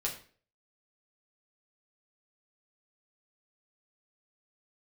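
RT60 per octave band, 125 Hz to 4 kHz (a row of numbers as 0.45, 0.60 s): 0.50, 0.45, 0.50, 0.40, 0.40, 0.35 s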